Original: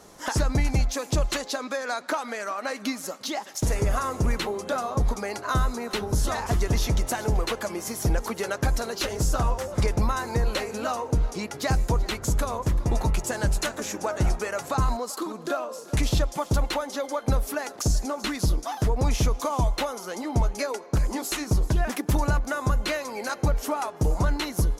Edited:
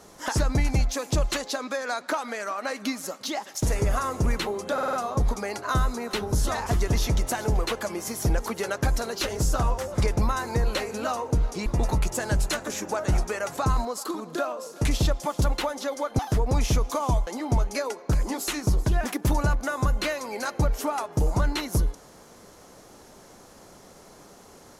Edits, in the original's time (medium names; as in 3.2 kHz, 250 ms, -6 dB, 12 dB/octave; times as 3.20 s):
4.73 s: stutter 0.05 s, 5 plays
11.46–12.78 s: delete
17.31–18.69 s: delete
19.77–20.11 s: delete